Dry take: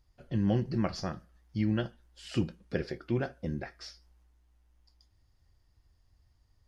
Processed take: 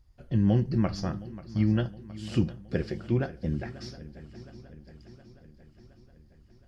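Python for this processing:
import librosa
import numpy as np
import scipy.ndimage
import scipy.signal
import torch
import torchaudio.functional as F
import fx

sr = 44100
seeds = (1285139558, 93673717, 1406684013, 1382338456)

p1 = fx.low_shelf(x, sr, hz=240.0, db=7.5)
y = p1 + fx.echo_swing(p1, sr, ms=717, ratio=3, feedback_pct=57, wet_db=-17.0, dry=0)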